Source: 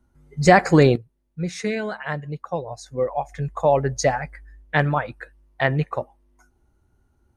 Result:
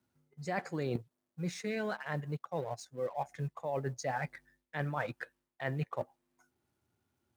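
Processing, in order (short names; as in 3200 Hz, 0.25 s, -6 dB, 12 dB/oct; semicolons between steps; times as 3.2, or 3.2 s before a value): G.711 law mismatch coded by A; HPF 100 Hz 24 dB/oct; reverse; compressor 12:1, threshold -29 dBFS, peak gain reduction 22 dB; reverse; gain -3 dB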